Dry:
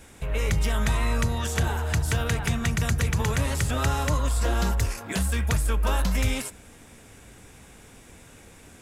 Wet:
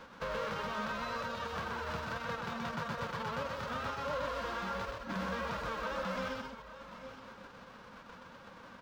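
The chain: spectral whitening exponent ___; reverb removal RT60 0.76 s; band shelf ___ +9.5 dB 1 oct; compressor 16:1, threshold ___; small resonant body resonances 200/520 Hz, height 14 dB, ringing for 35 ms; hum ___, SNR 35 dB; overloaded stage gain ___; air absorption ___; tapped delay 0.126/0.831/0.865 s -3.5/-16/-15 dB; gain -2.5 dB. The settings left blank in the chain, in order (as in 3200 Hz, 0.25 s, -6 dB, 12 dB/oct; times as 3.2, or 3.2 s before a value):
0.1, 1200 Hz, -31 dBFS, 60 Hz, 27.5 dB, 240 m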